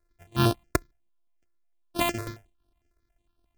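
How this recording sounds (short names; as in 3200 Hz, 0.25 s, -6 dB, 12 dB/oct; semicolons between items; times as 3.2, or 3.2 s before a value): a buzz of ramps at a fixed pitch in blocks of 128 samples; notches that jump at a steady rate 11 Hz 830–7100 Hz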